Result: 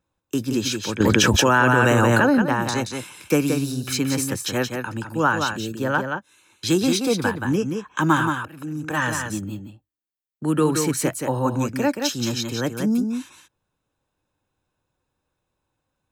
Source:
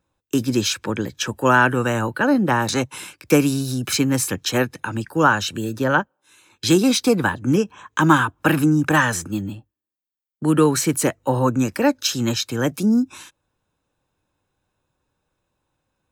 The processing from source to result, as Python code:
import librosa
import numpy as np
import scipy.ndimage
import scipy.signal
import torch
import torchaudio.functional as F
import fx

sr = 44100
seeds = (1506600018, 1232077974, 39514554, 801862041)

p1 = fx.auto_swell(x, sr, attack_ms=757.0, at=(8.01, 9.02))
p2 = p1 + fx.echo_single(p1, sr, ms=176, db=-5.5, dry=0)
p3 = fx.env_flatten(p2, sr, amount_pct=100, at=(1.0, 2.42))
y = F.gain(torch.from_numpy(p3), -4.0).numpy()